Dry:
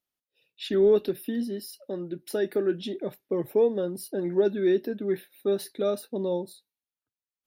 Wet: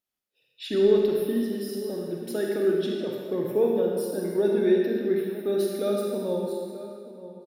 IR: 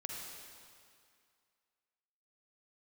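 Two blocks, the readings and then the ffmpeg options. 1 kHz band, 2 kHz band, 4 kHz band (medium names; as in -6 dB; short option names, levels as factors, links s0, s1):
+2.0 dB, +2.0 dB, +1.5 dB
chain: -filter_complex "[0:a]asplit=2[s0][s1];[s1]adelay=932.9,volume=0.2,highshelf=f=4000:g=-21[s2];[s0][s2]amix=inputs=2:normalize=0[s3];[1:a]atrim=start_sample=2205,asetrate=52920,aresample=44100[s4];[s3][s4]afir=irnorm=-1:irlink=0,volume=1.58"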